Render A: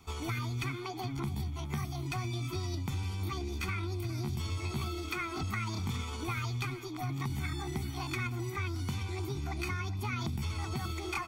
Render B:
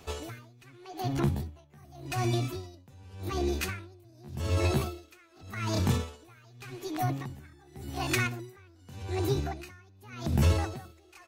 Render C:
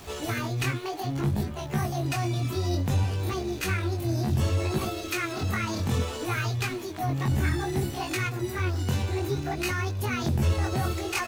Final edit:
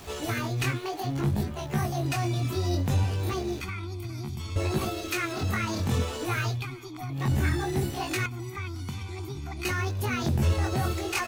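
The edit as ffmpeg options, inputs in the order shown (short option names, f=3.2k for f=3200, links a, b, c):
-filter_complex "[0:a]asplit=3[a][b][c];[2:a]asplit=4[d][e][f][g];[d]atrim=end=3.612[h];[a]atrim=start=3.608:end=4.562[i];[e]atrim=start=4.558:end=6.66[j];[b]atrim=start=6.5:end=7.25[k];[f]atrim=start=7.09:end=8.262[l];[c]atrim=start=8.258:end=9.652[m];[g]atrim=start=9.648[n];[h][i]acrossfade=d=0.004:c1=hsin:c2=hsin[o];[o][j]acrossfade=d=0.004:c1=hsin:c2=hsin[p];[p][k]acrossfade=d=0.16:c1=tri:c2=tri[q];[q][l]acrossfade=d=0.16:c1=tri:c2=tri[r];[r][m]acrossfade=d=0.004:c1=hsin:c2=hsin[s];[s][n]acrossfade=d=0.004:c1=hsin:c2=hsin"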